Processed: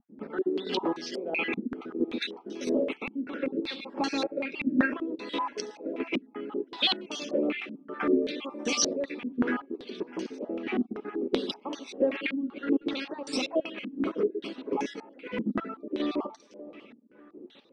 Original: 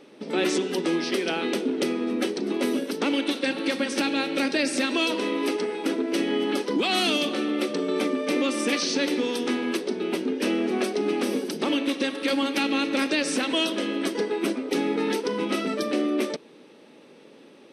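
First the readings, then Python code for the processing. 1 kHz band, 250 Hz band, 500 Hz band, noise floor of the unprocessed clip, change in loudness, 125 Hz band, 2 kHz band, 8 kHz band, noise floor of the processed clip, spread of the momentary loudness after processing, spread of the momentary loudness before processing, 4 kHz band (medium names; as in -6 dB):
-5.5 dB, -5.5 dB, -5.5 dB, -51 dBFS, -5.5 dB, -5.0 dB, -6.5 dB, -3.5 dB, -57 dBFS, 11 LU, 3 LU, -6.0 dB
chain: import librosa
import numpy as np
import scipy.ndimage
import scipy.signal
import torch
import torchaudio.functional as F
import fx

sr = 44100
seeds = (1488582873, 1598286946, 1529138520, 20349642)

p1 = fx.spec_dropout(x, sr, seeds[0], share_pct=38)
p2 = fx.chopper(p1, sr, hz=1.5, depth_pct=65, duty_pct=40)
p3 = np.clip(10.0 ** (27.0 / 20.0) * p2, -1.0, 1.0) / 10.0 ** (27.0 / 20.0)
p4 = p2 + (p3 * 10.0 ** (-7.0 / 20.0))
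p5 = fx.vibrato(p4, sr, rate_hz=0.41, depth_cents=7.3)
p6 = p5 + fx.echo_feedback(p5, sr, ms=594, feedback_pct=53, wet_db=-19.5, dry=0)
p7 = fx.filter_held_lowpass(p6, sr, hz=5.2, low_hz=240.0, high_hz=6000.0)
y = p7 * 10.0 ** (-6.0 / 20.0)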